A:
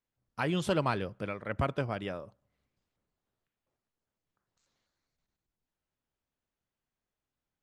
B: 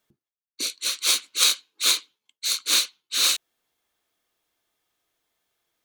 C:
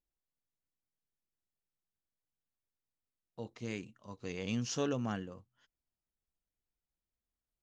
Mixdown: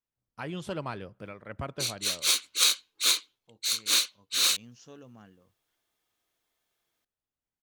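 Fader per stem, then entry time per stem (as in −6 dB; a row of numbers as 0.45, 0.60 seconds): −6.0, −3.5, −15.5 decibels; 0.00, 1.20, 0.10 seconds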